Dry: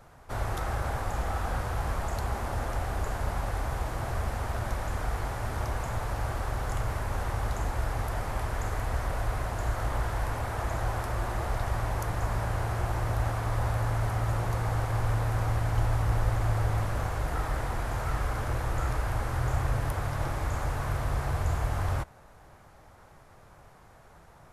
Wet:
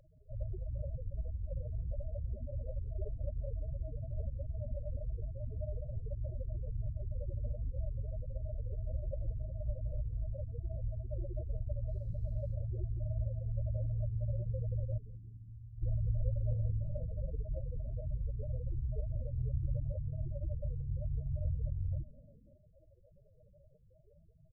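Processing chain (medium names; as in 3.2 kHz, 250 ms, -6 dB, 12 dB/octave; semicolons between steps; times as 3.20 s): 14.98–15.82 s: resonant low shelf 670 Hz -14 dB, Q 1.5; loudest bins only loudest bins 8; 11.88–12.54 s: added noise brown -60 dBFS; brick-wall FIR band-stop 640–3800 Hz; tone controls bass -10 dB, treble -7 dB; 16.50–17.08 s: doubling 25 ms -5.5 dB; frequency-shifting echo 173 ms, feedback 43%, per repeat -99 Hz, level -19 dB; trim +3.5 dB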